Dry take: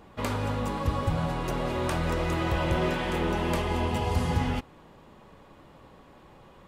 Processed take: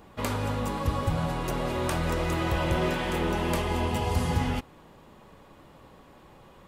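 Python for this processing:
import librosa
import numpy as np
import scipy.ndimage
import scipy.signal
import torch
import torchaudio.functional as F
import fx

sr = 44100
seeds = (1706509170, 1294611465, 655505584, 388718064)

y = fx.high_shelf(x, sr, hz=7900.0, db=7.0)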